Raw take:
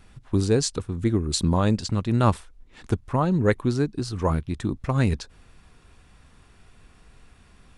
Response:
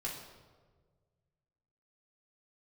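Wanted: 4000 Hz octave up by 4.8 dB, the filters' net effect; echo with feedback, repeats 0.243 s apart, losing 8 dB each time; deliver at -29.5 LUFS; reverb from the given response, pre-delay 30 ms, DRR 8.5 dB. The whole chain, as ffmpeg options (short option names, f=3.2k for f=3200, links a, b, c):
-filter_complex "[0:a]equalizer=f=4k:t=o:g=5.5,aecho=1:1:243|486|729|972|1215:0.398|0.159|0.0637|0.0255|0.0102,asplit=2[a][b];[1:a]atrim=start_sample=2205,adelay=30[c];[b][c]afir=irnorm=-1:irlink=0,volume=-10dB[d];[a][d]amix=inputs=2:normalize=0,volume=-6.5dB"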